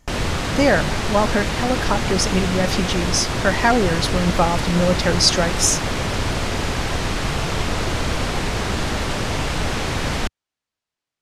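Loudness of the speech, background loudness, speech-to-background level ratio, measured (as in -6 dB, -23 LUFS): -20.0 LUFS, -23.0 LUFS, 3.0 dB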